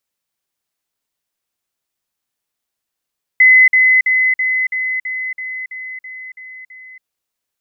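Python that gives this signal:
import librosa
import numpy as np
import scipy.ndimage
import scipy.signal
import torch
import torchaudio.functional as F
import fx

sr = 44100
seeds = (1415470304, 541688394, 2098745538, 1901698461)

y = fx.level_ladder(sr, hz=2030.0, from_db=-4.5, step_db=-3.0, steps=11, dwell_s=0.28, gap_s=0.05)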